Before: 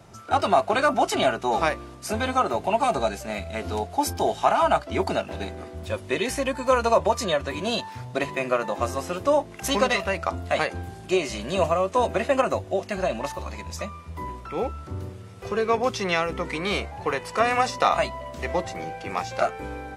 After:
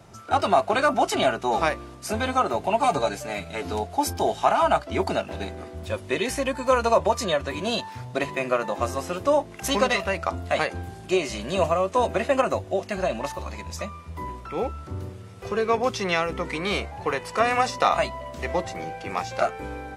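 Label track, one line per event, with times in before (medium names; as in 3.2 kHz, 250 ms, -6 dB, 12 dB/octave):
2.830000	3.730000	comb 6.8 ms, depth 64%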